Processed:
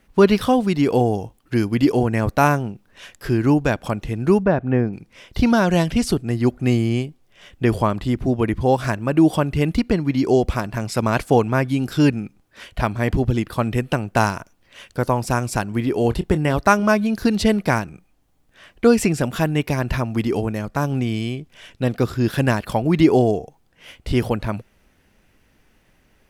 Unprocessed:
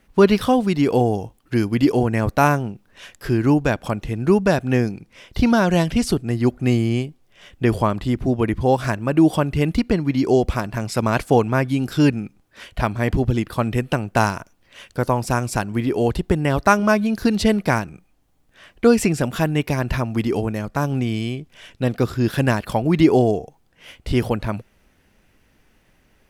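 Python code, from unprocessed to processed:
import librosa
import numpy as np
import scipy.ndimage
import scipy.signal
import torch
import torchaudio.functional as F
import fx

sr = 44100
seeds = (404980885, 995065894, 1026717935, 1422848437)

y = fx.lowpass(x, sr, hz=1600.0, slope=12, at=(4.43, 4.93))
y = fx.doubler(y, sr, ms=26.0, db=-13, at=(16.02, 16.54))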